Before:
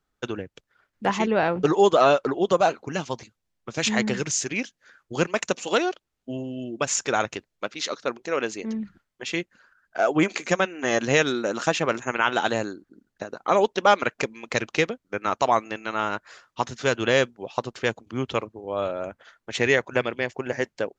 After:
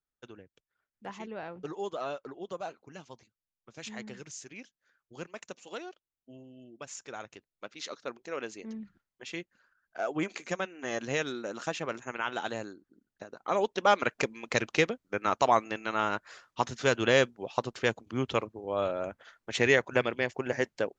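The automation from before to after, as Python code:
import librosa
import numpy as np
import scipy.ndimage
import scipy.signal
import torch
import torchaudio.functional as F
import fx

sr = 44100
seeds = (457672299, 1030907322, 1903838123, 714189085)

y = fx.gain(x, sr, db=fx.line((7.25, -18.5), (7.8, -11.0), (13.27, -11.0), (14.19, -3.0)))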